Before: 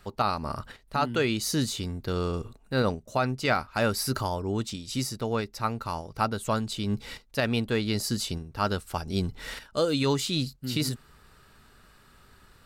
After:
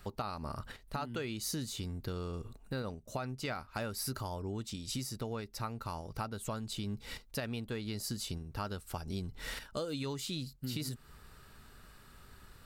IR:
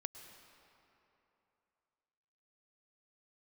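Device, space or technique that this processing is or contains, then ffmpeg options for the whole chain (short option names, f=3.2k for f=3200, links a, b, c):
ASMR close-microphone chain: -af "lowshelf=f=140:g=4.5,acompressor=threshold=-34dB:ratio=5,highshelf=f=11k:g=7,volume=-2dB"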